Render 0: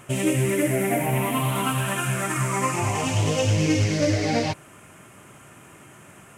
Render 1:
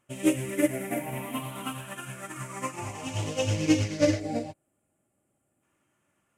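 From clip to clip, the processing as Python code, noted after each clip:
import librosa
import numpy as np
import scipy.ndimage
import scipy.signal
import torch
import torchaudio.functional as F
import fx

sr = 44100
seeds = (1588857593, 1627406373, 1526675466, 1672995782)

y = fx.spec_box(x, sr, start_s=4.2, length_s=1.42, low_hz=840.0, high_hz=6900.0, gain_db=-10)
y = y + 0.31 * np.pad(y, (int(3.5 * sr / 1000.0), 0))[:len(y)]
y = fx.upward_expand(y, sr, threshold_db=-34.0, expansion=2.5)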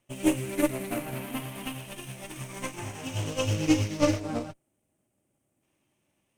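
y = fx.lower_of_two(x, sr, delay_ms=0.33)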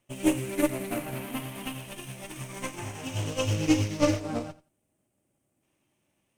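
y = fx.echo_feedback(x, sr, ms=87, feedback_pct=18, wet_db=-18.5)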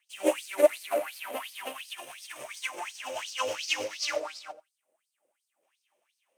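y = fx.filter_lfo_highpass(x, sr, shape='sine', hz=2.8, low_hz=500.0, high_hz=4900.0, q=6.1)
y = F.gain(torch.from_numpy(y), -3.0).numpy()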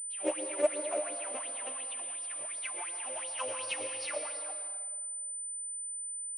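y = fx.rev_plate(x, sr, seeds[0], rt60_s=1.7, hf_ratio=0.75, predelay_ms=105, drr_db=6.0)
y = fx.pwm(y, sr, carrier_hz=9000.0)
y = F.gain(torch.from_numpy(y), -7.0).numpy()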